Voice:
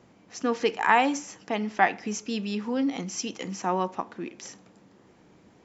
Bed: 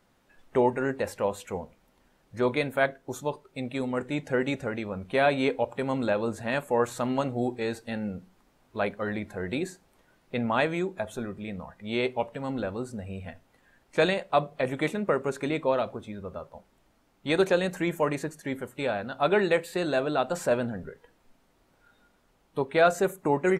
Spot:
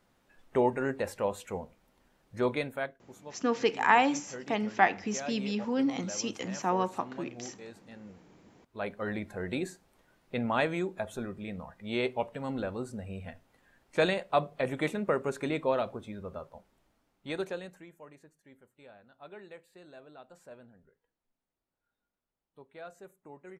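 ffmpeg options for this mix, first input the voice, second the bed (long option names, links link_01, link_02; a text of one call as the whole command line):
ffmpeg -i stem1.wav -i stem2.wav -filter_complex "[0:a]adelay=3000,volume=-2dB[link_01];[1:a]volume=10.5dB,afade=type=out:start_time=2.45:duration=0.52:silence=0.211349,afade=type=in:start_time=8.58:duration=0.51:silence=0.211349,afade=type=out:start_time=16.4:duration=1.48:silence=0.0794328[link_02];[link_01][link_02]amix=inputs=2:normalize=0" out.wav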